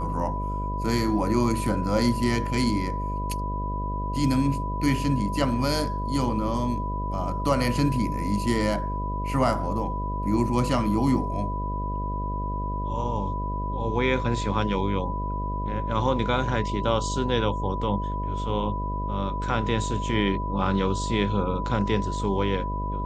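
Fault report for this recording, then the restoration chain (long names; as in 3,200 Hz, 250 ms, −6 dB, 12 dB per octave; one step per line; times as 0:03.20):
mains buzz 50 Hz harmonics 13 −30 dBFS
whistle 990 Hz −31 dBFS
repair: notch filter 990 Hz, Q 30
hum removal 50 Hz, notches 13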